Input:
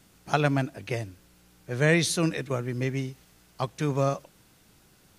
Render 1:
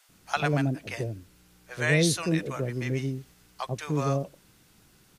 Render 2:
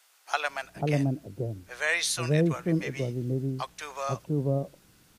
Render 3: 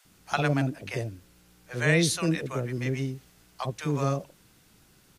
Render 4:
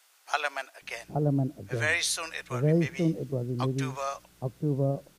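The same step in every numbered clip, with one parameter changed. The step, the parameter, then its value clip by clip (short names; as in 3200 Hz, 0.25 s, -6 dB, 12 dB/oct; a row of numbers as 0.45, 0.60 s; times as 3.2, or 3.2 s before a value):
bands offset in time, time: 90, 490, 50, 820 ms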